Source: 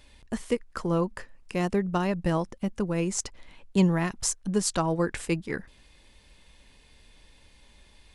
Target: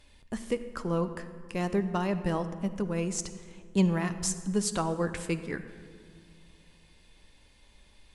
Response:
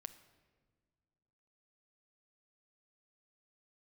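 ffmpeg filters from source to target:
-filter_complex "[1:a]atrim=start_sample=2205,asetrate=28665,aresample=44100[link_01];[0:a][link_01]afir=irnorm=-1:irlink=0"

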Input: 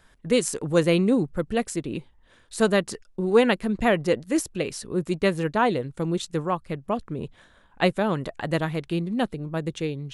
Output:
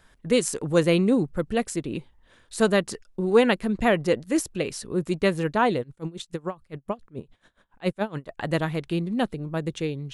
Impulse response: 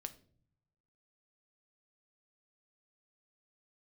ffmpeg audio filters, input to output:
-filter_complex "[0:a]asplit=3[link_01][link_02][link_03];[link_01]afade=type=out:start_time=5.82:duration=0.02[link_04];[link_02]aeval=exprs='val(0)*pow(10,-23*(0.5-0.5*cos(2*PI*7.1*n/s))/20)':channel_layout=same,afade=type=in:start_time=5.82:duration=0.02,afade=type=out:start_time=8.37:duration=0.02[link_05];[link_03]afade=type=in:start_time=8.37:duration=0.02[link_06];[link_04][link_05][link_06]amix=inputs=3:normalize=0"

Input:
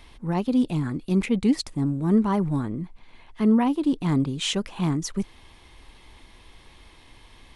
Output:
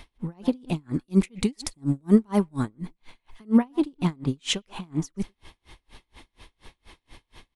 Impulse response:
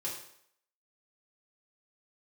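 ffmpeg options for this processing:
-filter_complex "[0:a]asettb=1/sr,asplit=3[link_01][link_02][link_03];[link_01]atrim=end=0.934[link_04];[link_02]atrim=start=0.93:end=3.58,asetpts=PTS-STARTPTS,afade=type=in:duration=0.004:curve=qsin,afade=type=out:start_time=2.646:duration=0.004:curve=qsin,highshelf=frequency=4400:gain=9.5[link_05];[link_03]atrim=start=3.576[link_06];[link_04][link_05]acrossfade=duration=0.004:curve1=hsin:curve2=qsin[link_07];[link_07][link_06]acrossfade=duration=0.004:curve1=qsin:curve2=hsin,asplit=2[link_08][link_09];[link_09]adelay=120,highpass=300,lowpass=3400,asoftclip=type=hard:threshold=-20dB,volume=-17dB[link_10];[link_08][link_10]amix=inputs=2:normalize=0,aeval=exprs='val(0)*pow(10,-37*(0.5-0.5*cos(2*PI*4.2*n/s))/20)':channel_layout=same,volume=5dB"

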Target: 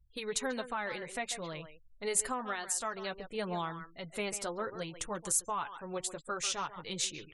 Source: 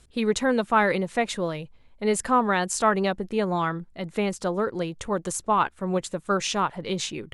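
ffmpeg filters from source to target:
ffmpeg -i in.wav -filter_complex "[0:a]equalizer=frequency=260:width_type=o:width=2.5:gain=-6.5,asplit=2[link_01][link_02];[link_02]adelay=140,highpass=300,lowpass=3400,asoftclip=type=hard:threshold=-19dB,volume=-11dB[link_03];[link_01][link_03]amix=inputs=2:normalize=0,alimiter=limit=-19.5dB:level=0:latency=1:release=459,flanger=delay=6:depth=2.3:regen=-39:speed=0.57:shape=triangular,afftfilt=real='re*gte(hypot(re,im),0.00178)':imag='im*gte(hypot(re,im),0.00178)':win_size=1024:overlap=0.75,aemphasis=mode=production:type=50fm,volume=-2.5dB" out.wav

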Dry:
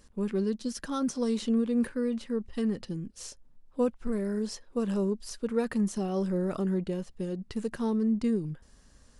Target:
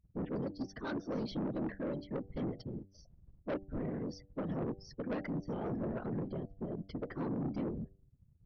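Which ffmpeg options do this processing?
ffmpeg -i in.wav -af "afftfilt=real='re*gte(hypot(re,im),0.00355)':imag='im*gte(hypot(re,im),0.00355)':win_size=1024:overlap=0.75,afftdn=noise_reduction=26:noise_floor=-45,afftfilt=real='hypot(re,im)*cos(2*PI*random(0))':imag='hypot(re,im)*sin(2*PI*random(1))':win_size=512:overlap=0.75,adynamicequalizer=threshold=0.00316:dfrequency=470:dqfactor=4.5:tfrequency=470:tqfactor=4.5:attack=5:release=100:ratio=0.375:range=1.5:mode=cutabove:tftype=bell,aresample=11025,asoftclip=type=tanh:threshold=-33dB,aresample=44100,bandreject=frequency=89.33:width_type=h:width=4,bandreject=frequency=178.66:width_type=h:width=4,bandreject=frequency=267.99:width_type=h:width=4,bandreject=frequency=357.32:width_type=h:width=4,bandreject=frequency=446.65:width_type=h:width=4,bandreject=frequency=535.98:width_type=h:width=4,bandreject=frequency=625.31:width_type=h:width=4,bandreject=frequency=714.64:width_type=h:width=4,asetrate=48000,aresample=44100,volume=1.5dB" out.wav

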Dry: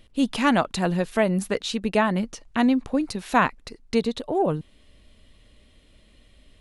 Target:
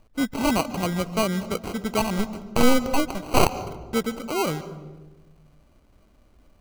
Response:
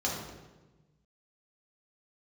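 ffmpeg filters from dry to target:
-filter_complex "[0:a]acrusher=samples=25:mix=1:aa=0.000001,asplit=3[link_01][link_02][link_03];[link_01]afade=type=out:start_time=2.18:duration=0.02[link_04];[link_02]aeval=exprs='0.501*(cos(1*acos(clip(val(0)/0.501,-1,1)))-cos(1*PI/2))+0.0398*(cos(5*acos(clip(val(0)/0.501,-1,1)))-cos(5*PI/2))+0.251*(cos(6*acos(clip(val(0)/0.501,-1,1)))-cos(6*PI/2))':channel_layout=same,afade=type=in:start_time=2.18:duration=0.02,afade=type=out:start_time=3.59:duration=0.02[link_05];[link_03]afade=type=in:start_time=3.59:duration=0.02[link_06];[link_04][link_05][link_06]amix=inputs=3:normalize=0,asplit=2[link_07][link_08];[1:a]atrim=start_sample=2205,adelay=142[link_09];[link_08][link_09]afir=irnorm=-1:irlink=0,volume=-22.5dB[link_10];[link_07][link_10]amix=inputs=2:normalize=0,volume=-2.5dB"

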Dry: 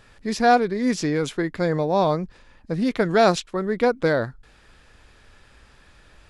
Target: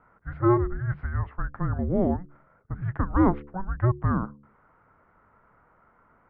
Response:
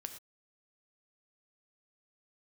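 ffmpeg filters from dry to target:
-af "bandreject=frequency=73.12:width_type=h:width=4,bandreject=frequency=146.24:width_type=h:width=4,bandreject=frequency=219.36:width_type=h:width=4,bandreject=frequency=292.48:width_type=h:width=4,bandreject=frequency=365.6:width_type=h:width=4,bandreject=frequency=438.72:width_type=h:width=4,bandreject=frequency=511.84:width_type=h:width=4,bandreject=frequency=584.96:width_type=h:width=4,bandreject=frequency=658.08:width_type=h:width=4,bandreject=frequency=731.2:width_type=h:width=4,bandreject=frequency=804.32:width_type=h:width=4,bandreject=frequency=877.44:width_type=h:width=4,highpass=frequency=290:width_type=q:width=0.5412,highpass=frequency=290:width_type=q:width=1.307,lowpass=frequency=2000:width_type=q:width=0.5176,lowpass=frequency=2000:width_type=q:width=0.7071,lowpass=frequency=2000:width_type=q:width=1.932,afreqshift=-370,volume=-2.5dB"

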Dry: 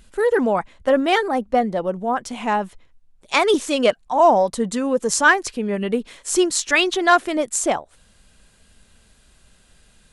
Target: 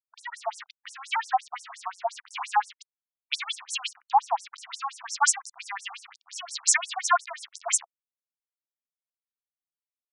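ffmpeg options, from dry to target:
ffmpeg -i in.wav -filter_complex "[0:a]asettb=1/sr,asplit=3[link_01][link_02][link_03];[link_01]atrim=end=1.074[link_04];[link_02]atrim=start=1.07:end=2.1,asetpts=PTS-STARTPTS,afade=type=in:duration=0.004:curve=qsin,afade=type=out:start_time=1.026:duration=0.004:curve=qsin,equalizer=frequency=125:width_type=o:width=1:gain=3,equalizer=frequency=500:width_type=o:width=1:gain=3,equalizer=frequency=8000:width_type=o:width=1:gain=-12[link_05];[link_03]atrim=start=2.096[link_06];[link_04][link_05]acrossfade=duration=0.004:curve1=hsin:curve2=qsin[link_07];[link_07][link_06]acrossfade=duration=0.004:curve1=qsin:curve2=hsin,acompressor=threshold=-20dB:ratio=12,acrossover=split=240|4300[link_08][link_09][link_10];[link_08]adelay=50[link_11];[link_10]adelay=120[link_12];[link_11][link_09][link_12]amix=inputs=3:normalize=0,aeval=exprs='val(0)*gte(abs(val(0)),0.015)':channel_layout=same,afftfilt=real='re*between(b*sr/1024,920*pow(7700/920,0.5+0.5*sin(2*PI*5.7*pts/sr))/1.41,920*pow(7700/920,0.5+0.5*sin(2*PI*5.7*pts/sr))*1.41)':imag='im*between(b*sr/1024,920*pow(7700/920,0.5+0.5*sin(2*PI*5.7*pts/sr))/1.41,920*pow(7700/920,0.5+0.5*sin(2*PI*5.7*pts/sr))*1.41)':win_size=1024:overlap=0.75,volume=8.5dB" out.wav

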